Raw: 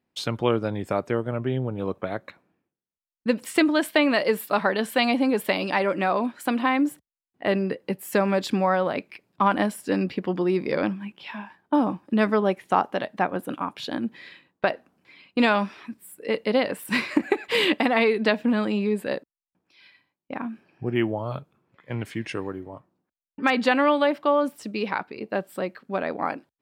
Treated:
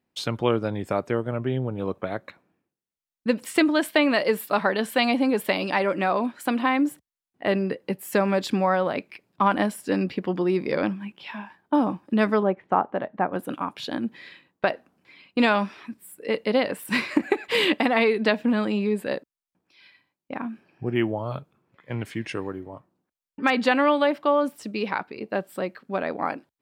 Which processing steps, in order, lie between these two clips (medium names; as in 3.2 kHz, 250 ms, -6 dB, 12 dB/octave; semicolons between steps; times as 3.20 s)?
12.43–13.33 s: low-pass 1.5 kHz 12 dB/octave